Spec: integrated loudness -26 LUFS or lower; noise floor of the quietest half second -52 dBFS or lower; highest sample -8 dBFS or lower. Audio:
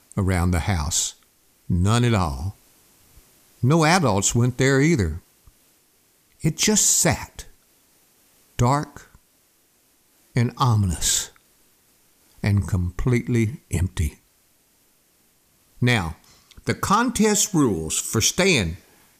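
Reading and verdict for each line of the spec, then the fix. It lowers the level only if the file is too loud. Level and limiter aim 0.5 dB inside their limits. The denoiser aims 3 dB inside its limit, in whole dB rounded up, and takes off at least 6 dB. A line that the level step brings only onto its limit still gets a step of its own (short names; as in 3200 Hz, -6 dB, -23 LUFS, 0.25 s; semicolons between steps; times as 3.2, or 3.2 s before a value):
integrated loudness -21.0 LUFS: fail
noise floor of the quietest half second -61 dBFS: OK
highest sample -5.0 dBFS: fail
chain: gain -5.5 dB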